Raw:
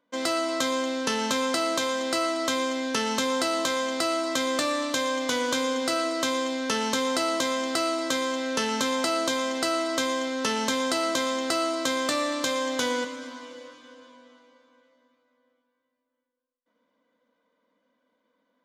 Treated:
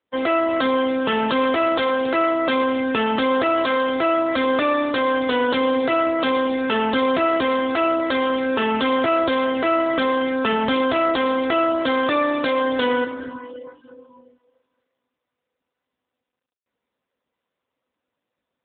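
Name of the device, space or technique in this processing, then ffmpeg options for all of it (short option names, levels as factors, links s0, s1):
mobile call with aggressive noise cancelling: -af "highpass=160,afftdn=nr=20:nf=-40,volume=2.66" -ar 8000 -c:a libopencore_amrnb -b:a 7950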